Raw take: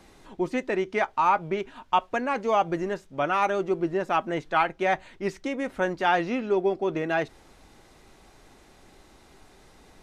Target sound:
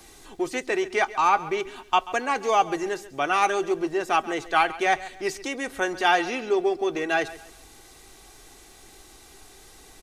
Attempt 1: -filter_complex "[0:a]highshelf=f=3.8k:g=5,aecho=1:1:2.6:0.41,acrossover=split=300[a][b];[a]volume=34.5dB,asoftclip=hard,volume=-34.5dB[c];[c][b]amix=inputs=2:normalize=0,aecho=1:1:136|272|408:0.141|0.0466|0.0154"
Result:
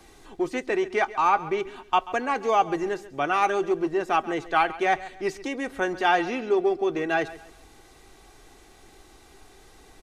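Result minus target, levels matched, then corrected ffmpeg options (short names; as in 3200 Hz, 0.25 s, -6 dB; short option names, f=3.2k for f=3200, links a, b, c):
8000 Hz band -7.0 dB; overloaded stage: distortion -5 dB
-filter_complex "[0:a]highshelf=f=3.8k:g=15,aecho=1:1:2.6:0.41,acrossover=split=300[a][b];[a]volume=41dB,asoftclip=hard,volume=-41dB[c];[c][b]amix=inputs=2:normalize=0,aecho=1:1:136|272|408:0.141|0.0466|0.0154"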